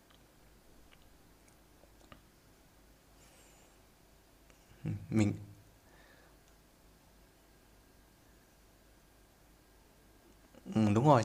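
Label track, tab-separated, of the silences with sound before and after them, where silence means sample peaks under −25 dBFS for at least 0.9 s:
5.290000	10.760000	silence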